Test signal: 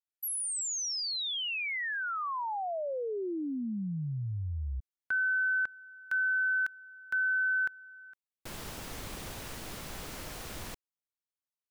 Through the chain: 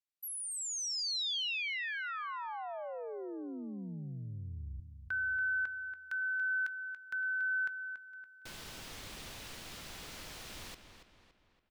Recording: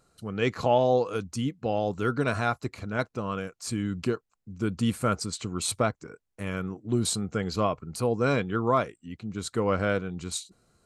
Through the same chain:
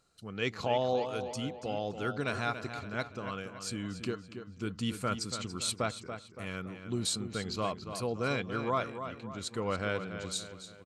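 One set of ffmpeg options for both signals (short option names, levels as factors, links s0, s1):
-filter_complex "[0:a]equalizer=f=3700:w=0.57:g=7.5,asplit=2[s0][s1];[s1]adelay=283,lowpass=f=4400:p=1,volume=0.355,asplit=2[s2][s3];[s3]adelay=283,lowpass=f=4400:p=1,volume=0.47,asplit=2[s4][s5];[s5]adelay=283,lowpass=f=4400:p=1,volume=0.47,asplit=2[s6][s7];[s7]adelay=283,lowpass=f=4400:p=1,volume=0.47,asplit=2[s8][s9];[s9]adelay=283,lowpass=f=4400:p=1,volume=0.47[s10];[s0][s2][s4][s6][s8][s10]amix=inputs=6:normalize=0,volume=0.376"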